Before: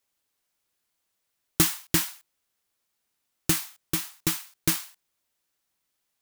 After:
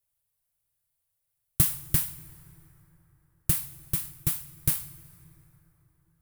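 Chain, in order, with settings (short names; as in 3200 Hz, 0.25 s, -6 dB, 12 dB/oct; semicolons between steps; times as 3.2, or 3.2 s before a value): EQ curve 140 Hz 0 dB, 210 Hz -28 dB, 580 Hz -13 dB, 1000 Hz -17 dB, 6600 Hz -17 dB, 10000 Hz -6 dB; on a send: reverb RT60 4.4 s, pre-delay 68 ms, DRR 16.5 dB; on the sum: gain +7 dB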